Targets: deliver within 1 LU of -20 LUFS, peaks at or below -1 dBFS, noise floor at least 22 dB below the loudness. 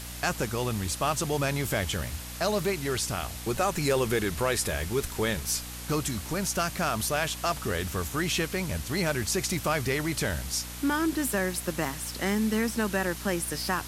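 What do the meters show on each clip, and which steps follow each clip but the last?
hum 60 Hz; highest harmonic 300 Hz; hum level -40 dBFS; noise floor -39 dBFS; noise floor target -51 dBFS; loudness -28.5 LUFS; peak level -13.0 dBFS; loudness target -20.0 LUFS
-> hum notches 60/120/180/240/300 Hz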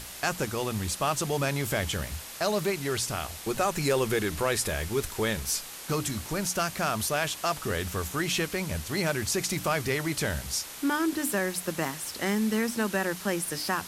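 hum not found; noise floor -42 dBFS; noise floor target -51 dBFS
-> noise reduction 9 dB, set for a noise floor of -42 dBFS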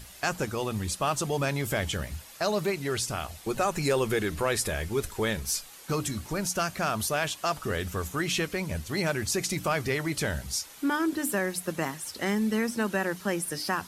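noise floor -48 dBFS; noise floor target -52 dBFS
-> noise reduction 6 dB, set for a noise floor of -48 dBFS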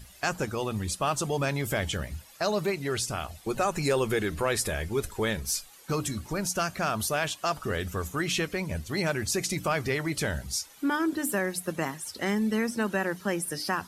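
noise floor -53 dBFS; loudness -29.5 LUFS; peak level -13.5 dBFS; loudness target -20.0 LUFS
-> trim +9.5 dB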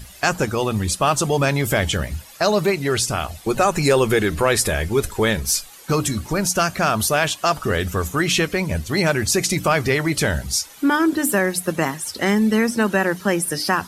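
loudness -20.0 LUFS; peak level -4.0 dBFS; noise floor -43 dBFS

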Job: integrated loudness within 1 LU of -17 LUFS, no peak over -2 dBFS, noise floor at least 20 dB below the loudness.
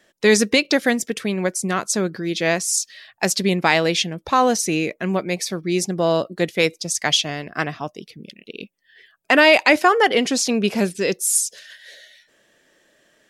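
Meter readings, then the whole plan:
loudness -19.0 LUFS; peak level -1.5 dBFS; loudness target -17.0 LUFS
-> trim +2 dB; peak limiter -2 dBFS

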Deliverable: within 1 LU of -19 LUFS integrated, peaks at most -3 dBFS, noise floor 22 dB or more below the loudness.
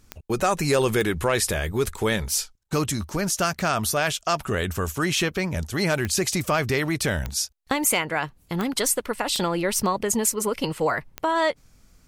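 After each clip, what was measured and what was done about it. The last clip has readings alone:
clicks found 7; loudness -24.5 LUFS; peak level -8.5 dBFS; loudness target -19.0 LUFS
-> de-click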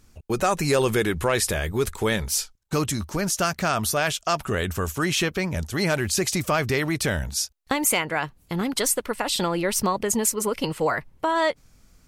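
clicks found 0; loudness -24.5 LUFS; peak level -9.0 dBFS; loudness target -19.0 LUFS
-> trim +5.5 dB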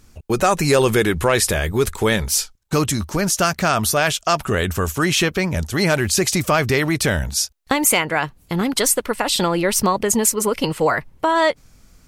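loudness -19.0 LUFS; peak level -3.5 dBFS; noise floor -53 dBFS

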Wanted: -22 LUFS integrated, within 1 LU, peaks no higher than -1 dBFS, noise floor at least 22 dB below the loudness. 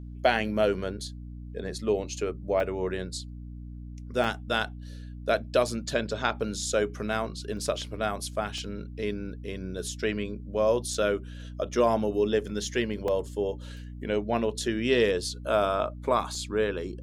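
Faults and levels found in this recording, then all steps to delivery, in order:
dropouts 7; longest dropout 2.2 ms; hum 60 Hz; highest harmonic 300 Hz; hum level -38 dBFS; loudness -29.0 LUFS; peak level -10.0 dBFS; loudness target -22.0 LUFS
-> interpolate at 2.60/4.24/7.57/8.58/10.94/13.08/16.35 s, 2.2 ms; de-hum 60 Hz, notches 5; trim +7 dB

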